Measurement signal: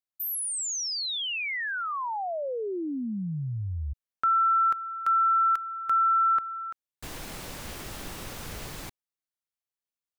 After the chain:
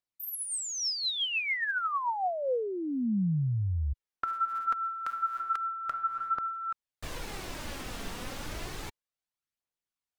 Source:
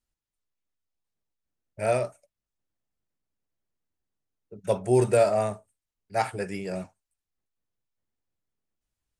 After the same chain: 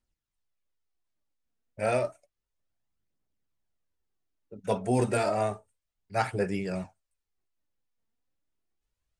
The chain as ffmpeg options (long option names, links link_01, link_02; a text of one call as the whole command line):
ffmpeg -i in.wav -af "highshelf=frequency=10000:gain=-11,aphaser=in_gain=1:out_gain=1:delay=4.5:decay=0.39:speed=0.31:type=triangular,afftfilt=real='re*lt(hypot(re,im),0.794)':imag='im*lt(hypot(re,im),0.794)':win_size=1024:overlap=0.75" out.wav